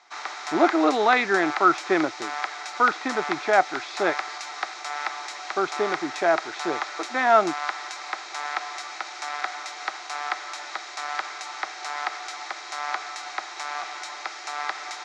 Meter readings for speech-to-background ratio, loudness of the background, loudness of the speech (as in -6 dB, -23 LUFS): 8.5 dB, -32.0 LUFS, -23.5 LUFS